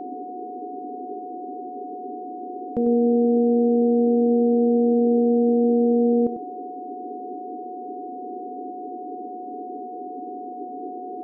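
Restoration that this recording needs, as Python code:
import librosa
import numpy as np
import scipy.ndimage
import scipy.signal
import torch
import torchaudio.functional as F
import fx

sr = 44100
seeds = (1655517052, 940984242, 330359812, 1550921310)

y = fx.notch(x, sr, hz=730.0, q=30.0)
y = fx.noise_reduce(y, sr, print_start_s=8.97, print_end_s=9.47, reduce_db=30.0)
y = fx.fix_echo_inverse(y, sr, delay_ms=97, level_db=-10.0)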